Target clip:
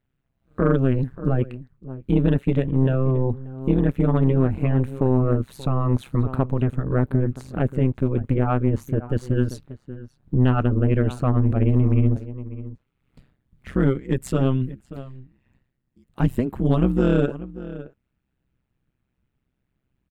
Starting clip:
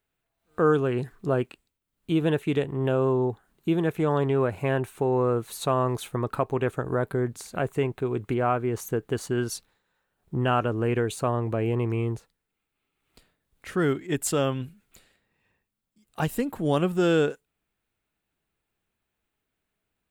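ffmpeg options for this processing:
ffmpeg -i in.wav -filter_complex "[0:a]bass=frequency=250:gain=14,treble=frequency=4000:gain=-10,asplit=2[link_01][link_02];[link_02]adelay=583.1,volume=-16dB,highshelf=frequency=4000:gain=-13.1[link_03];[link_01][link_03]amix=inputs=2:normalize=0,tremolo=f=130:d=1,asplit=2[link_04][link_05];[link_05]aeval=exprs='0.501*sin(PI/2*1.58*val(0)/0.501)':channel_layout=same,volume=-8dB[link_06];[link_04][link_06]amix=inputs=2:normalize=0,volume=-3dB" out.wav

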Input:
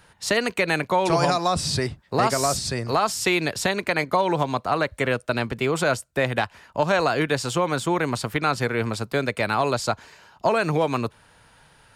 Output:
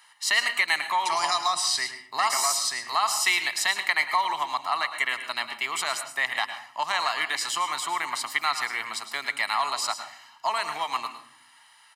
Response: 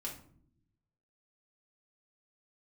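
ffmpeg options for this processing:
-filter_complex "[0:a]highpass=1200,aecho=1:1:1:0.77,asplit=2[link_01][link_02];[1:a]atrim=start_sample=2205,adelay=106[link_03];[link_02][link_03]afir=irnorm=-1:irlink=0,volume=-7.5dB[link_04];[link_01][link_04]amix=inputs=2:normalize=0"

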